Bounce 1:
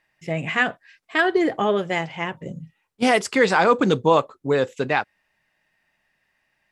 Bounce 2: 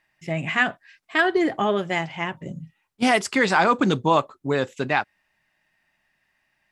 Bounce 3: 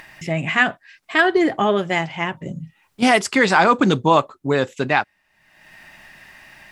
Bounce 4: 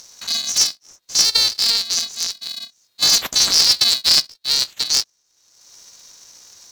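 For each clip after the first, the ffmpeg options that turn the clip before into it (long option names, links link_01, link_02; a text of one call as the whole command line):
ffmpeg -i in.wav -af "equalizer=frequency=480:width_type=o:width=0.31:gain=-8" out.wav
ffmpeg -i in.wav -af "acompressor=mode=upward:threshold=-31dB:ratio=2.5,volume=4dB" out.wav
ffmpeg -i in.wav -af "afftfilt=real='real(if(lt(b,736),b+184*(1-2*mod(floor(b/184),2)),b),0)':imag='imag(if(lt(b,736),b+184*(1-2*mod(floor(b/184),2)),b),0)':win_size=2048:overlap=0.75,aeval=exprs='val(0)*sgn(sin(2*PI*230*n/s))':channel_layout=same" out.wav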